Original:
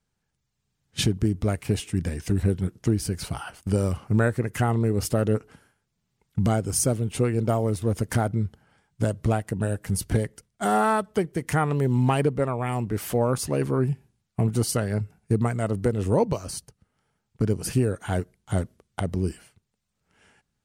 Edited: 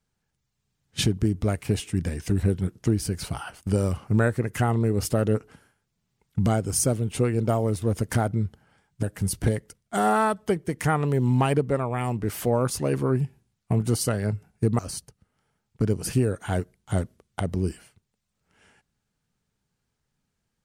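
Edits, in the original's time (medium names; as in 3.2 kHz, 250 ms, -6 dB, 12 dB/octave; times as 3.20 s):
9.03–9.71 s: delete
15.47–16.39 s: delete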